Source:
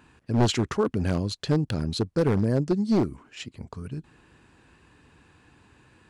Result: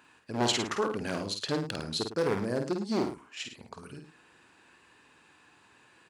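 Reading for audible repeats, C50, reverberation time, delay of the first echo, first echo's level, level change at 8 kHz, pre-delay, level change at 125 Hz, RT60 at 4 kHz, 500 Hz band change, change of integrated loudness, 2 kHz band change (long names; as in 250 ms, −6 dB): 2, no reverb audible, no reverb audible, 50 ms, −5.5 dB, +1.5 dB, no reverb audible, −13.0 dB, no reverb audible, −4.0 dB, −6.0 dB, +0.5 dB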